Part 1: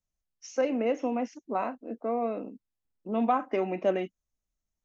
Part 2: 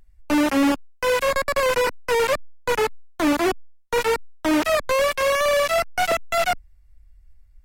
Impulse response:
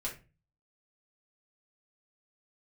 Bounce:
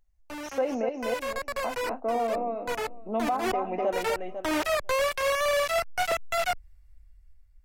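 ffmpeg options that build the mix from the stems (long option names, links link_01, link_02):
-filter_complex "[0:a]equalizer=frequency=770:width_type=o:width=1.1:gain=9,volume=-3dB,asplit=3[link_01][link_02][link_03];[link_01]atrim=end=0.89,asetpts=PTS-STARTPTS,afade=type=out:start_time=0.886:duration=0.004:curve=hsin[link_04];[link_02]atrim=start=0.89:end=1.64,asetpts=PTS-STARTPTS,volume=0[link_05];[link_03]atrim=start=1.64,asetpts=PTS-STARTPTS,afade=type=in:duration=0.004:curve=hsin[link_06];[link_04][link_05][link_06]concat=n=3:v=0:a=1,asplit=3[link_07][link_08][link_09];[link_08]volume=-4.5dB[link_10];[1:a]dynaudnorm=framelen=310:gausssize=7:maxgain=7.5dB,equalizer=frequency=240:width_type=o:width=1.1:gain=-8.5,volume=-6dB,afade=type=in:start_time=2.85:duration=0.27:silence=0.334965[link_11];[link_09]apad=whole_len=337130[link_12];[link_11][link_12]sidechaincompress=threshold=-31dB:ratio=12:attack=16:release=132[link_13];[link_10]aecho=0:1:249|498|747|996|1245:1|0.32|0.102|0.0328|0.0105[link_14];[link_07][link_13][link_14]amix=inputs=3:normalize=0,alimiter=limit=-18.5dB:level=0:latency=1:release=149"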